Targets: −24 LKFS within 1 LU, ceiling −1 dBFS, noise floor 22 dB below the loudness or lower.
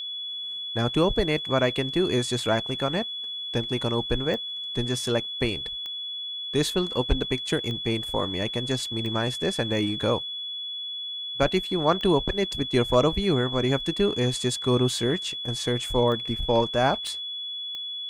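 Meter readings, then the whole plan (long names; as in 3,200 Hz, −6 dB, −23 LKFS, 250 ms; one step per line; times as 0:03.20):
number of clicks 8; interfering tone 3,400 Hz; level of the tone −31 dBFS; integrated loudness −26.0 LKFS; sample peak −8.5 dBFS; target loudness −24.0 LKFS
→ click removal
notch filter 3,400 Hz, Q 30
level +2 dB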